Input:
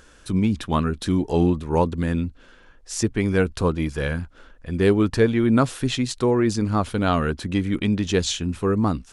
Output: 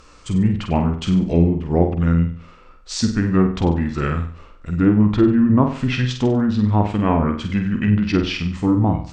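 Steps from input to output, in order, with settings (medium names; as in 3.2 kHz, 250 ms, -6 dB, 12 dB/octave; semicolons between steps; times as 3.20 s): formant shift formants -4 st; low-pass that closes with the level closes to 1.2 kHz, closed at -15 dBFS; flutter echo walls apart 8.2 m, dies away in 0.46 s; trim +3 dB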